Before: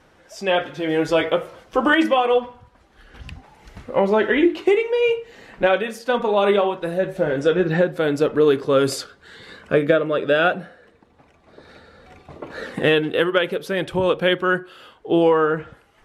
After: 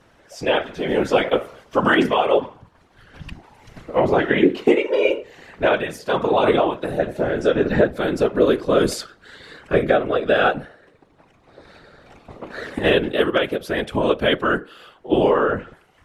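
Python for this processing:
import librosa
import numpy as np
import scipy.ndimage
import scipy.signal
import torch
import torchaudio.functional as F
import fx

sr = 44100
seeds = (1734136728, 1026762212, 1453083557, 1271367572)

y = fx.whisperise(x, sr, seeds[0])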